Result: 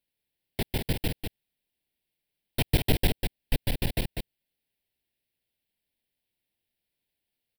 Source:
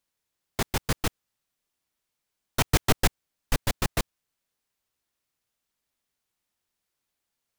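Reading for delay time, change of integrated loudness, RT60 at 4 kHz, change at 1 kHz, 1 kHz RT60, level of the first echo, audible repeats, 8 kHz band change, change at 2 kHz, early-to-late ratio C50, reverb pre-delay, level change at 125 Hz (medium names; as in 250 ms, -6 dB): 197 ms, -2.0 dB, no reverb, -8.5 dB, no reverb, -6.0 dB, 1, -8.5 dB, -4.5 dB, no reverb, no reverb, +1.0 dB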